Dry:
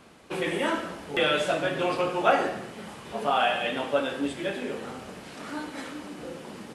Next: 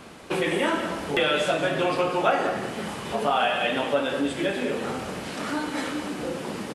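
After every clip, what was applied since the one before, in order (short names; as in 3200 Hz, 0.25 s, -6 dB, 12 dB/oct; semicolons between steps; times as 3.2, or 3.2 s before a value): compressor 2:1, threshold -34 dBFS, peak gain reduction 10 dB; on a send: echo 0.199 s -11.5 dB; on the sum: gain +8.5 dB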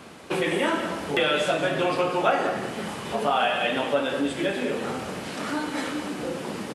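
HPF 68 Hz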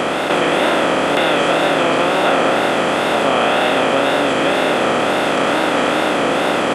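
per-bin compression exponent 0.2; wow and flutter 94 cents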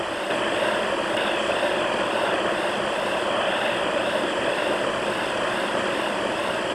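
low shelf 230 Hz -9 dB; whisperiser; ripple EQ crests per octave 1.3, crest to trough 7 dB; gain -8 dB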